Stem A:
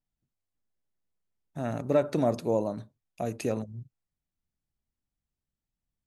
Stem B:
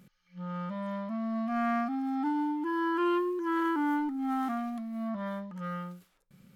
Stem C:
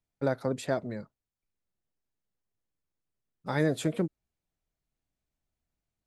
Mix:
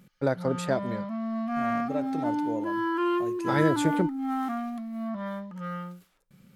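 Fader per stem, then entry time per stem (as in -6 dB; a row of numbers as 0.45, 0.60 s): -8.5, +1.5, +2.5 dB; 0.00, 0.00, 0.00 s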